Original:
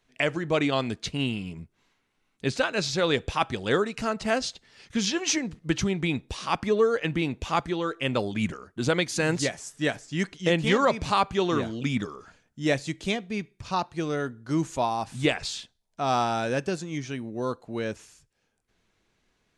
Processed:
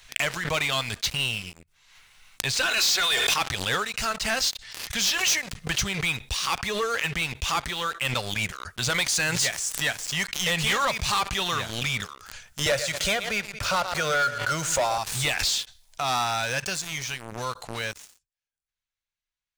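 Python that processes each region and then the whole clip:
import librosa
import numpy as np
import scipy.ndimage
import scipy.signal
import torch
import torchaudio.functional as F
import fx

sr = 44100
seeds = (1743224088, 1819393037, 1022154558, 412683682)

y = fx.chain(x, sr, fx.highpass(hz=400.0, slope=12),
    fx.comb(ms=2.8, depth=0.66),
    fx.sustainer(db_per_s=20.0), at=(2.65, 3.34))
y = fx.chain(y, sr, fx.small_body(hz=(560.0, 1400.0), ring_ms=25, db=16),
    fx.echo_feedback(ms=115, feedback_pct=32, wet_db=-17),
    fx.band_squash(depth_pct=40), at=(12.66, 14.98))
y = fx.tone_stack(y, sr, knobs='10-0-10')
y = fx.leveller(y, sr, passes=5)
y = fx.pre_swell(y, sr, db_per_s=54.0)
y = y * 10.0 ** (-6.0 / 20.0)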